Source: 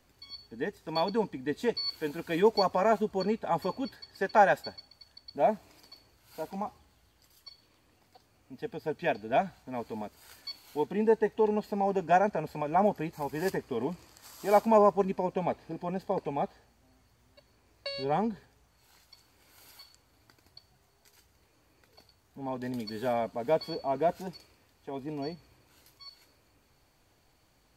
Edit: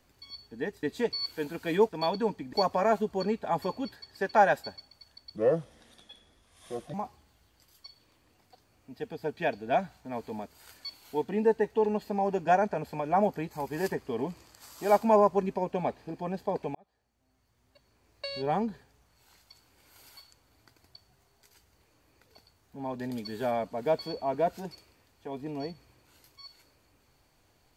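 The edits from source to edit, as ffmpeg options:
ffmpeg -i in.wav -filter_complex "[0:a]asplit=7[link_01][link_02][link_03][link_04][link_05][link_06][link_07];[link_01]atrim=end=0.832[link_08];[link_02]atrim=start=1.468:end=2.532[link_09];[link_03]atrim=start=0.828:end=1.472[link_10];[link_04]atrim=start=2.528:end=5.364[link_11];[link_05]atrim=start=5.36:end=6.56,asetpts=PTS-STARTPTS,asetrate=33516,aresample=44100[link_12];[link_06]atrim=start=6.556:end=16.37,asetpts=PTS-STARTPTS,afade=type=out:start_time=9.81:duration=0.004:curve=hsin[link_13];[link_07]atrim=start=16.37,asetpts=PTS-STARTPTS,afade=type=in:duration=1.54[link_14];[link_08][link_09]acrossfade=duration=0.004:curve1=hsin:curve2=hsin[link_15];[link_15][link_10]acrossfade=duration=0.004:curve1=hsin:curve2=hsin[link_16];[link_16][link_11]acrossfade=duration=0.004:curve1=hsin:curve2=hsin[link_17];[link_17][link_12]acrossfade=duration=0.004:curve1=hsin:curve2=hsin[link_18];[link_13][link_14]concat=n=2:v=0:a=1[link_19];[link_18][link_19]acrossfade=duration=0.004:curve1=hsin:curve2=hsin" out.wav

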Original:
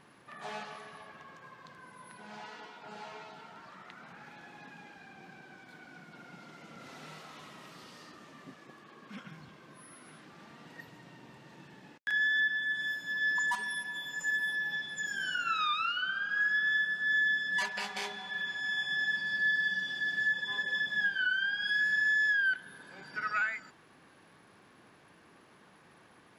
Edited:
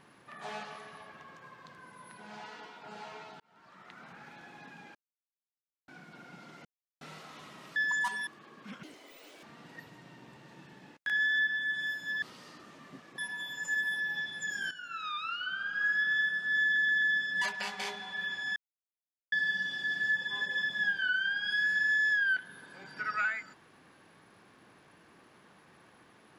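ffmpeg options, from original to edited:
ffmpeg -i in.wav -filter_complex "[0:a]asplit=18[link_01][link_02][link_03][link_04][link_05][link_06][link_07][link_08][link_09][link_10][link_11][link_12][link_13][link_14][link_15][link_16][link_17][link_18];[link_01]atrim=end=3.4,asetpts=PTS-STARTPTS,afade=type=out:start_time=3.396:duration=0.004:curve=hsin[link_19];[link_02]atrim=start=3.4:end=4.95,asetpts=PTS-STARTPTS,afade=type=in:duration=0.6,afade=type=out:start_time=1.546:duration=0.004:curve=hsin[link_20];[link_03]atrim=start=4.95:end=5.88,asetpts=PTS-STARTPTS,volume=0[link_21];[link_04]atrim=start=5.88:end=6.65,asetpts=PTS-STARTPTS,afade=type=in:duration=0.004:curve=hsin,afade=type=out:start_time=0.766:duration=0.004:curve=hsin[link_22];[link_05]atrim=start=6.65:end=7.01,asetpts=PTS-STARTPTS,volume=0[link_23];[link_06]atrim=start=7.01:end=7.762,asetpts=PTS-STARTPTS,afade=type=in:duration=0.004:curve=hsin[link_24];[link_07]atrim=start=13.228:end=13.742[link_25];[link_08]atrim=start=8.718:end=9.284[link_26];[link_09]atrim=start=9.28:end=10.44,asetpts=PTS-STARTPTS,asetrate=85113,aresample=44100[link_27];[link_10]atrim=start=10.436:end=13.232[link_28];[link_11]atrim=start=7.758:end=8.722[link_29];[link_12]atrim=start=13.738:end=15.27,asetpts=PTS-STARTPTS,afade=type=out:start_time=1.528:duration=0.004:curve=hsin:silence=0.211349[link_30];[link_13]atrim=start=15.27:end=17.322,asetpts=PTS-STARTPTS,afade=type=in:duration=1.18:silence=0.211349[link_31];[link_14]atrim=start=17.188:end=17.322[link_32];[link_15]atrim=start=17.188:end=17.322[link_33];[link_16]atrim=start=17.188:end=18.73,asetpts=PTS-STARTPTS,afade=type=out:start_time=1.538:duration=0.004:curve=hsin[link_34];[link_17]atrim=start=18.73:end=19.49,asetpts=PTS-STARTPTS,volume=0[link_35];[link_18]atrim=start=19.49,asetpts=PTS-STARTPTS,afade=type=in:duration=0.004:curve=hsin[link_36];[link_19][link_20][link_21][link_22][link_23][link_24]concat=n=6:v=0:a=1[link_37];[link_37][link_25]acrossfade=duration=0.004:curve1=hsin:curve2=hsin[link_38];[link_38][link_26]acrossfade=duration=0.004:curve1=hsin:curve2=hsin[link_39];[link_39][link_27]acrossfade=duration=0.004:curve1=hsin:curve2=hsin[link_40];[link_40][link_28]acrossfade=duration=0.004:curve1=hsin:curve2=hsin[link_41];[link_41][link_29]acrossfade=duration=0.004:curve1=hsin:curve2=hsin[link_42];[link_30][link_31]concat=n=2:v=0:a=1[link_43];[link_42][link_43]acrossfade=duration=0.004:curve1=hsin:curve2=hsin[link_44];[link_44][link_32]acrossfade=duration=0.004:curve1=hsin:curve2=hsin[link_45];[link_45][link_33]acrossfade=duration=0.004:curve1=hsin:curve2=hsin[link_46];[link_34][link_35][link_36]concat=n=3:v=0:a=1[link_47];[link_46][link_47]acrossfade=duration=0.004:curve1=hsin:curve2=hsin" out.wav

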